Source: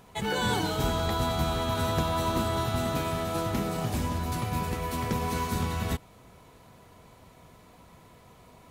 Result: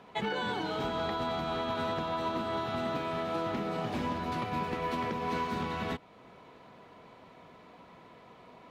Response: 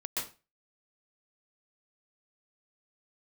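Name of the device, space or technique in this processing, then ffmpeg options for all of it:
DJ mixer with the lows and highs turned down: -filter_complex "[0:a]acrossover=split=170 4300:gain=0.158 1 0.0794[s0][s1][s2];[s0][s1][s2]amix=inputs=3:normalize=0,alimiter=level_in=1.19:limit=0.0631:level=0:latency=1:release=340,volume=0.841,volume=1.26"

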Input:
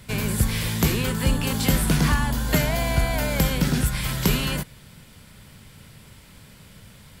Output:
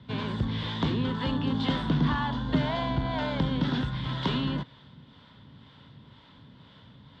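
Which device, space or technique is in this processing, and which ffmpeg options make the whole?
guitar amplifier with harmonic tremolo: -filter_complex "[0:a]acrossover=split=430[s0][s1];[s0]aeval=exprs='val(0)*(1-0.5/2+0.5/2*cos(2*PI*2*n/s))':c=same[s2];[s1]aeval=exprs='val(0)*(1-0.5/2-0.5/2*cos(2*PI*2*n/s))':c=same[s3];[s2][s3]amix=inputs=2:normalize=0,asoftclip=type=tanh:threshold=0.188,highpass=76,equalizer=f=130:t=q:w=4:g=4,equalizer=f=270:t=q:w=4:g=9,equalizer=f=980:t=q:w=4:g=8,equalizer=f=2400:t=q:w=4:g=-9,equalizer=f=3500:t=q:w=4:g=9,lowpass=f=3700:w=0.5412,lowpass=f=3700:w=1.3066,volume=0.668"

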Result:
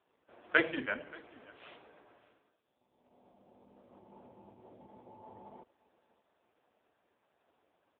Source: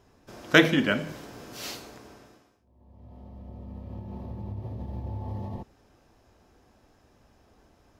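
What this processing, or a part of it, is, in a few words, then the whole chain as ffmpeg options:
satellite phone: -af "highpass=380,lowpass=3200,aecho=1:1:580:0.0794,volume=0.473" -ar 8000 -c:a libopencore_amrnb -b:a 5150

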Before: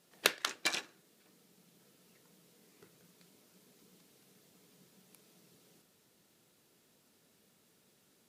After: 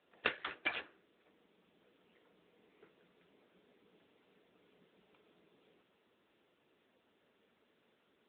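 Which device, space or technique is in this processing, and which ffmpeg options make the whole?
telephone: -af "highpass=280,lowpass=3600,volume=1.12" -ar 8000 -c:a libopencore_amrnb -b:a 10200

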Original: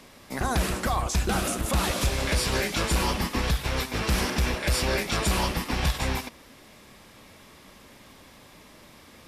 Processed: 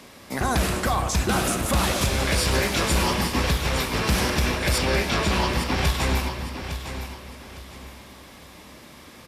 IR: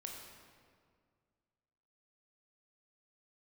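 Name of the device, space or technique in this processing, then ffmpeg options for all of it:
saturated reverb return: -filter_complex "[0:a]highpass=50,asettb=1/sr,asplit=3[s0][s1][s2];[s0]atrim=end=4.784[s3];[s1]atrim=start=4.78:end=5.78,asetpts=PTS-STARTPTS,afade=t=in:d=0.004:c=qsin,afade=t=out:st=0.996:d=0.004:c=qsin,acrossover=split=5800[s4][s5];[s5]acompressor=threshold=0.00398:ratio=4:attack=1:release=60[s6];[s4][s6]amix=inputs=2:normalize=0[s7];[s2]atrim=start=5.776[s8];[s3][s7]acrossfade=d=0.004:c1=hsin:c2=qsin[s9];[s9][s8]acrossfade=d=0.004:c1=qsin:c2=hsin,asplit=2[s10][s11];[1:a]atrim=start_sample=2205[s12];[s11][s12]afir=irnorm=-1:irlink=0,asoftclip=type=tanh:threshold=0.0562,volume=1.12[s13];[s10][s13]amix=inputs=2:normalize=0,aecho=1:1:857|1714|2571:0.316|0.0949|0.0285"

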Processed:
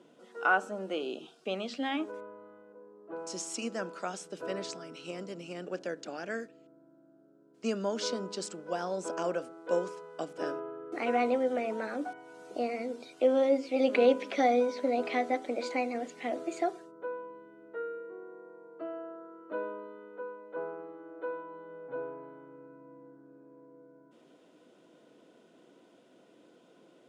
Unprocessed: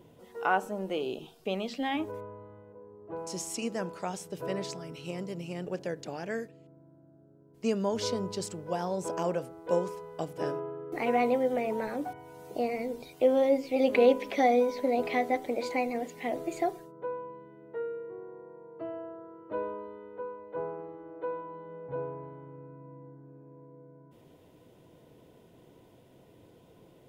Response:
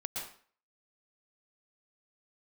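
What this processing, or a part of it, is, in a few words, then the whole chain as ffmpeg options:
television speaker: -af "highpass=f=220:w=0.5412,highpass=f=220:w=1.3066,equalizer=f=430:t=q:w=4:g=-4,equalizer=f=910:t=q:w=4:g=-6,equalizer=f=1400:t=q:w=4:g=7,equalizer=f=2000:t=q:w=4:g=-3,lowpass=f=8800:w=0.5412,lowpass=f=8800:w=1.3066"

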